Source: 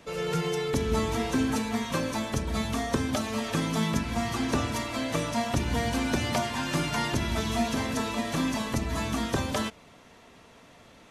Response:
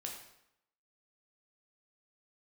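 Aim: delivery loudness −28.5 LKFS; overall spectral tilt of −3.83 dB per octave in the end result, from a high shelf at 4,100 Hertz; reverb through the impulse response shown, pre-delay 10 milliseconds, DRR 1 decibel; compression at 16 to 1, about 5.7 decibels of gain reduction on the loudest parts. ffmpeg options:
-filter_complex "[0:a]highshelf=frequency=4100:gain=5.5,acompressor=threshold=-27dB:ratio=16,asplit=2[link_01][link_02];[1:a]atrim=start_sample=2205,adelay=10[link_03];[link_02][link_03]afir=irnorm=-1:irlink=0,volume=0.5dB[link_04];[link_01][link_04]amix=inputs=2:normalize=0,volume=1dB"

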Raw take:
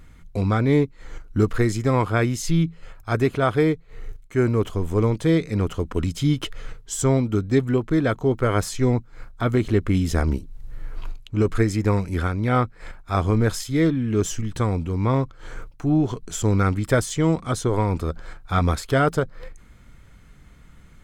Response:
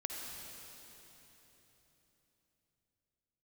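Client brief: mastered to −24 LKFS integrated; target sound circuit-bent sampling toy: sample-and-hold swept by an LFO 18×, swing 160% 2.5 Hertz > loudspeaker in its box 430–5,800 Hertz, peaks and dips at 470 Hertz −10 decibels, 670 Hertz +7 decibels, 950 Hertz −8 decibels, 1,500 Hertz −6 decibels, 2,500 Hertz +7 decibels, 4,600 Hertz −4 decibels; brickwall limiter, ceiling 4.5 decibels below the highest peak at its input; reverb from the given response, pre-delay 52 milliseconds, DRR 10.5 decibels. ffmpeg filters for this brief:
-filter_complex "[0:a]alimiter=limit=-12.5dB:level=0:latency=1,asplit=2[link_01][link_02];[1:a]atrim=start_sample=2205,adelay=52[link_03];[link_02][link_03]afir=irnorm=-1:irlink=0,volume=-11dB[link_04];[link_01][link_04]amix=inputs=2:normalize=0,acrusher=samples=18:mix=1:aa=0.000001:lfo=1:lforange=28.8:lforate=2.5,highpass=430,equalizer=frequency=470:width_type=q:width=4:gain=-10,equalizer=frequency=670:width_type=q:width=4:gain=7,equalizer=frequency=950:width_type=q:width=4:gain=-8,equalizer=frequency=1500:width_type=q:width=4:gain=-6,equalizer=frequency=2500:width_type=q:width=4:gain=7,equalizer=frequency=4600:width_type=q:width=4:gain=-4,lowpass=frequency=5800:width=0.5412,lowpass=frequency=5800:width=1.3066,volume=6dB"

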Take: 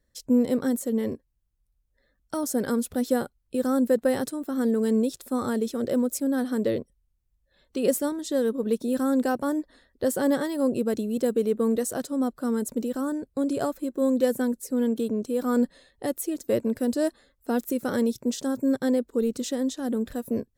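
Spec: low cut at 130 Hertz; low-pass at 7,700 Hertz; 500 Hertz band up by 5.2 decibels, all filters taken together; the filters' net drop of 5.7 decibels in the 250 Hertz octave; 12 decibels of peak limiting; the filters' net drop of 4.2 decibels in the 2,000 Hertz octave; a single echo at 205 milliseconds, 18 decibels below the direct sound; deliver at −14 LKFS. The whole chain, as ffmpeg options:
ffmpeg -i in.wav -af "highpass=130,lowpass=7700,equalizer=frequency=250:width_type=o:gain=-7.5,equalizer=frequency=500:width_type=o:gain=7.5,equalizer=frequency=2000:width_type=o:gain=-6.5,alimiter=limit=-18dB:level=0:latency=1,aecho=1:1:205:0.126,volume=14dB" out.wav

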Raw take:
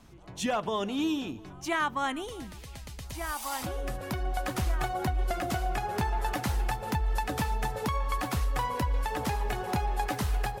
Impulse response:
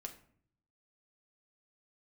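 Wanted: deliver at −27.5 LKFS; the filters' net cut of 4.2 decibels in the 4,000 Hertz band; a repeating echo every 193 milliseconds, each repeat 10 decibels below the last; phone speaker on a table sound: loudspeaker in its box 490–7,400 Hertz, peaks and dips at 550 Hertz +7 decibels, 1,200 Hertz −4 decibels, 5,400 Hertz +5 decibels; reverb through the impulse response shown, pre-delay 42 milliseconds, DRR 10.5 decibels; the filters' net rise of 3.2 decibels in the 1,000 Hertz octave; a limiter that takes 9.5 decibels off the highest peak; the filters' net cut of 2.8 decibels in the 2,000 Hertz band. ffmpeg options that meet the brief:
-filter_complex "[0:a]equalizer=frequency=1000:width_type=o:gain=5.5,equalizer=frequency=2000:width_type=o:gain=-4,equalizer=frequency=4000:width_type=o:gain=-6,alimiter=level_in=1.5dB:limit=-24dB:level=0:latency=1,volume=-1.5dB,aecho=1:1:193|386|579|772:0.316|0.101|0.0324|0.0104,asplit=2[link_01][link_02];[1:a]atrim=start_sample=2205,adelay=42[link_03];[link_02][link_03]afir=irnorm=-1:irlink=0,volume=-7dB[link_04];[link_01][link_04]amix=inputs=2:normalize=0,highpass=frequency=490:width=0.5412,highpass=frequency=490:width=1.3066,equalizer=frequency=550:width_type=q:width=4:gain=7,equalizer=frequency=1200:width_type=q:width=4:gain=-4,equalizer=frequency=5400:width_type=q:width=4:gain=5,lowpass=frequency=7400:width=0.5412,lowpass=frequency=7400:width=1.3066,volume=8dB"

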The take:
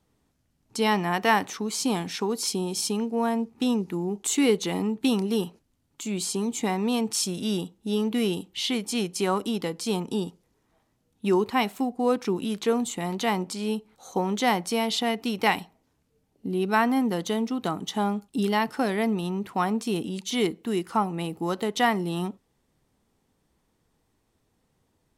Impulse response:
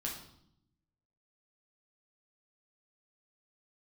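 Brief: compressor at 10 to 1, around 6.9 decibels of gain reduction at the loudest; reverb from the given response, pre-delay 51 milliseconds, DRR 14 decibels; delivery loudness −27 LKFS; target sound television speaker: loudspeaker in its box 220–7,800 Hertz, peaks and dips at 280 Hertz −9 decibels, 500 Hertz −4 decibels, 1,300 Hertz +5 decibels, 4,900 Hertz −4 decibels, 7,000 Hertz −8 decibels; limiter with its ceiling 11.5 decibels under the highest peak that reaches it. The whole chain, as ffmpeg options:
-filter_complex "[0:a]acompressor=threshold=-24dB:ratio=10,alimiter=level_in=2dB:limit=-24dB:level=0:latency=1,volume=-2dB,asplit=2[link_01][link_02];[1:a]atrim=start_sample=2205,adelay=51[link_03];[link_02][link_03]afir=irnorm=-1:irlink=0,volume=-15dB[link_04];[link_01][link_04]amix=inputs=2:normalize=0,highpass=frequency=220:width=0.5412,highpass=frequency=220:width=1.3066,equalizer=frequency=280:width_type=q:width=4:gain=-9,equalizer=frequency=500:width_type=q:width=4:gain=-4,equalizer=frequency=1300:width_type=q:width=4:gain=5,equalizer=frequency=4900:width_type=q:width=4:gain=-4,equalizer=frequency=7000:width_type=q:width=4:gain=-8,lowpass=frequency=7800:width=0.5412,lowpass=frequency=7800:width=1.3066,volume=11dB"

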